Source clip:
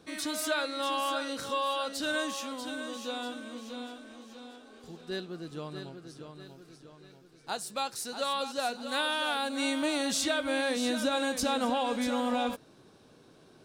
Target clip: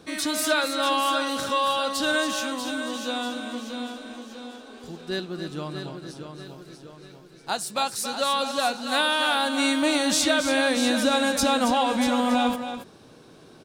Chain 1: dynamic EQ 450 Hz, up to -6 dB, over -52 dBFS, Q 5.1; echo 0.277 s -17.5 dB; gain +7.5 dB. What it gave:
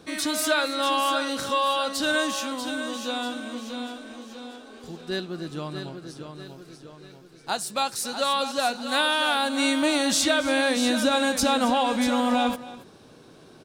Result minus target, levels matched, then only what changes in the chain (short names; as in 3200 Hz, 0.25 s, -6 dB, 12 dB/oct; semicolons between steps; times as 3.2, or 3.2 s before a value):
echo-to-direct -8 dB
change: echo 0.277 s -9.5 dB